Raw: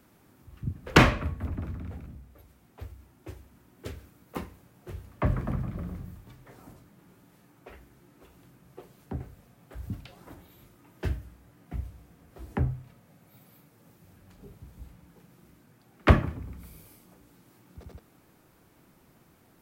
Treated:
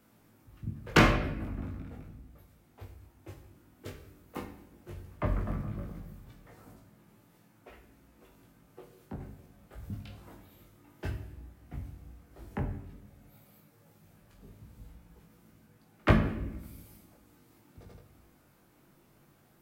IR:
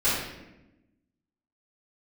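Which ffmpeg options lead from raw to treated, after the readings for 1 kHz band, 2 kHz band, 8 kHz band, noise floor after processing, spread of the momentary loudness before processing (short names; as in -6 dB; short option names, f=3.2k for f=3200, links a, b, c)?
-3.0 dB, -3.0 dB, -3.5 dB, -64 dBFS, 25 LU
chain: -filter_complex "[0:a]flanger=delay=18.5:depth=2.1:speed=0.13,asplit=2[a][b];[1:a]atrim=start_sample=2205,highshelf=f=10k:g=10[c];[b][c]afir=irnorm=-1:irlink=0,volume=-21dB[d];[a][d]amix=inputs=2:normalize=0,volume=-1.5dB"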